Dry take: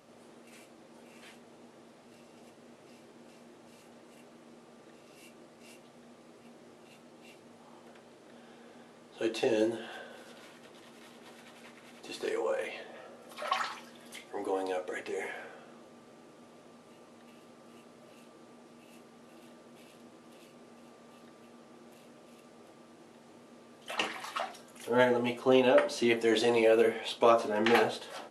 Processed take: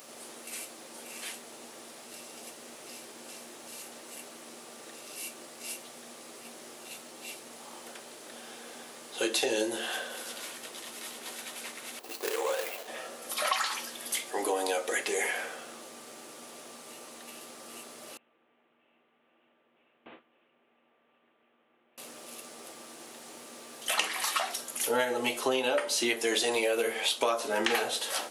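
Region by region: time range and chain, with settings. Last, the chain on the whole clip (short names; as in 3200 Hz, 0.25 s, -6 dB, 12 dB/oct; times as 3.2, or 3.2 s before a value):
11.99–12.88 median filter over 25 samples + HPF 570 Hz 6 dB/oct
18.17–21.98 delta modulation 16 kbps, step -58 dBFS + gate with hold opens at -43 dBFS, closes at -48 dBFS
whole clip: RIAA curve recording; compressor 6:1, threshold -34 dBFS; gain +8.5 dB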